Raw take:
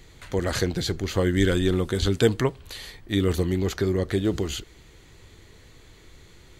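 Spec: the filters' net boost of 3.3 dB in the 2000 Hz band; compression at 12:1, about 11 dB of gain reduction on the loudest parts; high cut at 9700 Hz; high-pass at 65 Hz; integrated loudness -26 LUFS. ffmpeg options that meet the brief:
-af "highpass=65,lowpass=9.7k,equalizer=f=2k:t=o:g=4,acompressor=threshold=-25dB:ratio=12,volume=5.5dB"

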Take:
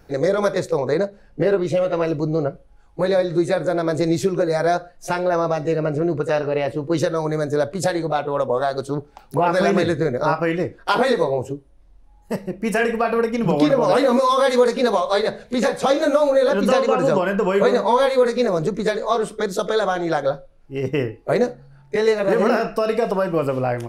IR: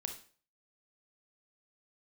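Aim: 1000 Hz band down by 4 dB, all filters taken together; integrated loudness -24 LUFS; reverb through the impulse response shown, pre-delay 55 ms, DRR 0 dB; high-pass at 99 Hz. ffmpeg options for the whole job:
-filter_complex "[0:a]highpass=99,equalizer=f=1k:t=o:g=-5.5,asplit=2[a][b];[1:a]atrim=start_sample=2205,adelay=55[c];[b][c]afir=irnorm=-1:irlink=0,volume=1dB[d];[a][d]amix=inputs=2:normalize=0,volume=-5.5dB"

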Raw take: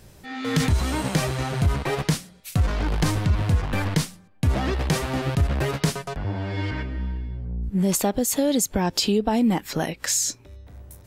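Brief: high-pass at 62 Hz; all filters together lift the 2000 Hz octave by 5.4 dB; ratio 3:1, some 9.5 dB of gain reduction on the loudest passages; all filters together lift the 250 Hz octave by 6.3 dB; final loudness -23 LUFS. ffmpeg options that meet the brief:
-af "highpass=62,equalizer=f=250:t=o:g=8,equalizer=f=2k:t=o:g=6.5,acompressor=threshold=-24dB:ratio=3,volume=4.5dB"

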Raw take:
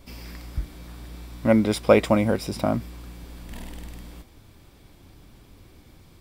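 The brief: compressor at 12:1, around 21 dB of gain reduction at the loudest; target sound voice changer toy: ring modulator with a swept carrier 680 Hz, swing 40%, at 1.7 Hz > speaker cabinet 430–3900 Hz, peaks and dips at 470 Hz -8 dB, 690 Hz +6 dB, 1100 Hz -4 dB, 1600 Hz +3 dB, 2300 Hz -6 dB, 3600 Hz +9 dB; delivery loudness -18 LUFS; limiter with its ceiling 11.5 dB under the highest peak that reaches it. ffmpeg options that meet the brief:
-af "acompressor=threshold=-32dB:ratio=12,alimiter=level_in=6dB:limit=-24dB:level=0:latency=1,volume=-6dB,aeval=exprs='val(0)*sin(2*PI*680*n/s+680*0.4/1.7*sin(2*PI*1.7*n/s))':c=same,highpass=430,equalizer=f=470:t=q:w=4:g=-8,equalizer=f=690:t=q:w=4:g=6,equalizer=f=1.1k:t=q:w=4:g=-4,equalizer=f=1.6k:t=q:w=4:g=3,equalizer=f=2.3k:t=q:w=4:g=-6,equalizer=f=3.6k:t=q:w=4:g=9,lowpass=f=3.9k:w=0.5412,lowpass=f=3.9k:w=1.3066,volume=27dB"

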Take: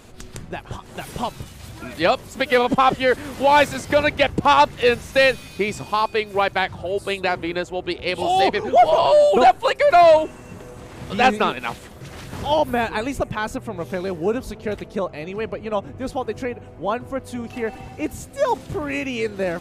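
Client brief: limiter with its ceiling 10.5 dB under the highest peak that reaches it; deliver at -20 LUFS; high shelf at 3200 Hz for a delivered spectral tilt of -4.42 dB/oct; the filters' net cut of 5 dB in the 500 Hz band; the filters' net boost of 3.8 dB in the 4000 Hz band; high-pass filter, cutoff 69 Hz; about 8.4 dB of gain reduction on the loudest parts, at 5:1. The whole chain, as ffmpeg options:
-af "highpass=69,equalizer=f=500:t=o:g=-6.5,highshelf=f=3.2k:g=-3,equalizer=f=4k:t=o:g=7,acompressor=threshold=-21dB:ratio=5,volume=10.5dB,alimiter=limit=-9dB:level=0:latency=1"

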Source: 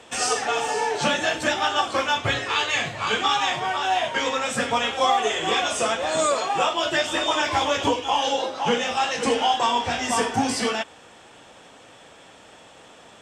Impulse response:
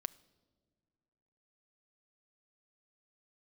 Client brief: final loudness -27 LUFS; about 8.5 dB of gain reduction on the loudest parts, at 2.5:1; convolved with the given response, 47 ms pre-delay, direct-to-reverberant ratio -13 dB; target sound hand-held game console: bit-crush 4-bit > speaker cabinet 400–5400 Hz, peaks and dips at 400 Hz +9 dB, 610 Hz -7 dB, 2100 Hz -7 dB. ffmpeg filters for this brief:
-filter_complex "[0:a]acompressor=threshold=-30dB:ratio=2.5,asplit=2[a][b];[1:a]atrim=start_sample=2205,adelay=47[c];[b][c]afir=irnorm=-1:irlink=0,volume=15dB[d];[a][d]amix=inputs=2:normalize=0,acrusher=bits=3:mix=0:aa=0.000001,highpass=400,equalizer=f=400:t=q:w=4:g=9,equalizer=f=610:t=q:w=4:g=-7,equalizer=f=2.1k:t=q:w=4:g=-7,lowpass=f=5.4k:w=0.5412,lowpass=f=5.4k:w=1.3066,volume=-9dB"

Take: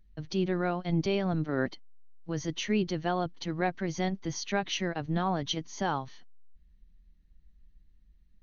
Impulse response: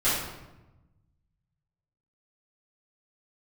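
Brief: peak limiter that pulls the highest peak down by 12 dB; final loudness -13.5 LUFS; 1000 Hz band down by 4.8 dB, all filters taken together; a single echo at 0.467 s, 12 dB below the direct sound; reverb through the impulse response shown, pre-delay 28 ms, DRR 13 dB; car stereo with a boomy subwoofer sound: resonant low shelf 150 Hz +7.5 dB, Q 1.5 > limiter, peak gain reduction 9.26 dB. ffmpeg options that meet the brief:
-filter_complex "[0:a]equalizer=f=1k:t=o:g=-7,alimiter=level_in=5dB:limit=-24dB:level=0:latency=1,volume=-5dB,aecho=1:1:467:0.251,asplit=2[a][b];[1:a]atrim=start_sample=2205,adelay=28[c];[b][c]afir=irnorm=-1:irlink=0,volume=-26.5dB[d];[a][d]amix=inputs=2:normalize=0,lowshelf=f=150:t=q:w=1.5:g=7.5,volume=30dB,alimiter=limit=-3dB:level=0:latency=1"

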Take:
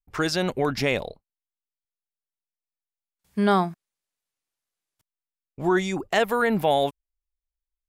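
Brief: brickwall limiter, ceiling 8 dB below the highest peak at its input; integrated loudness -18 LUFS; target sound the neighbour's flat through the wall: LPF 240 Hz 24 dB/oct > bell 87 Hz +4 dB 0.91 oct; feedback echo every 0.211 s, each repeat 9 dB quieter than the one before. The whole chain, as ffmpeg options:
-af "alimiter=limit=-18dB:level=0:latency=1,lowpass=f=240:w=0.5412,lowpass=f=240:w=1.3066,equalizer=f=87:t=o:w=0.91:g=4,aecho=1:1:211|422|633|844:0.355|0.124|0.0435|0.0152,volume=17dB"

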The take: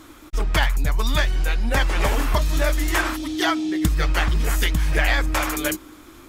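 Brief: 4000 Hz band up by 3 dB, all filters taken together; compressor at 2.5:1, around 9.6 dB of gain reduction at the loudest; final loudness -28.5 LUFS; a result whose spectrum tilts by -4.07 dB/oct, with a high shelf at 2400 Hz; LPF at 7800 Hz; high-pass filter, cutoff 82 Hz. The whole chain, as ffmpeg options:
-af "highpass=82,lowpass=7.8k,highshelf=f=2.4k:g=-5.5,equalizer=f=4k:t=o:g=9,acompressor=threshold=-32dB:ratio=2.5,volume=3.5dB"

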